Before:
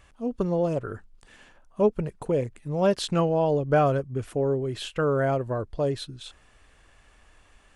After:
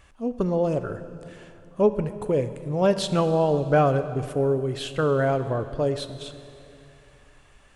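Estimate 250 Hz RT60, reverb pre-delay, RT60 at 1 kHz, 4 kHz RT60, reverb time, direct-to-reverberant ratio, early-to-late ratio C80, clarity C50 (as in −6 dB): 3.0 s, 9 ms, 2.6 s, 2.4 s, 2.7 s, 10.5 dB, 12.5 dB, 11.5 dB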